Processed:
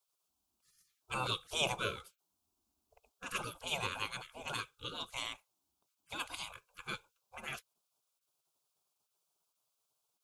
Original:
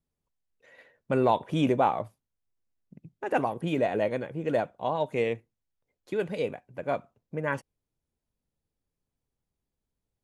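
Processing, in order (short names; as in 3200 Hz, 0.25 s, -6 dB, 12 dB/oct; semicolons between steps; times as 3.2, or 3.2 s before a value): fixed phaser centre 500 Hz, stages 6; spectral gate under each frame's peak -25 dB weak; gain +12 dB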